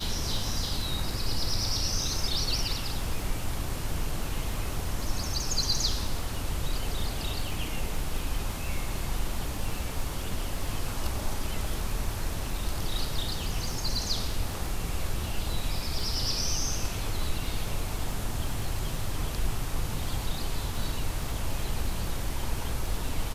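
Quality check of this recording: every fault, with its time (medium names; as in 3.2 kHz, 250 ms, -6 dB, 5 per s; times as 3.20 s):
crackle 28 per s -34 dBFS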